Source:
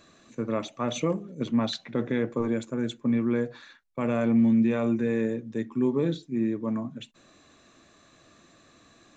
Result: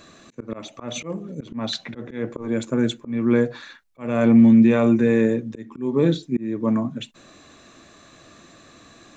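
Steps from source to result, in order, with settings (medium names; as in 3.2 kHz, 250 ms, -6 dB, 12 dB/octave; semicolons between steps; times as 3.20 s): slow attack 285 ms; trim +8.5 dB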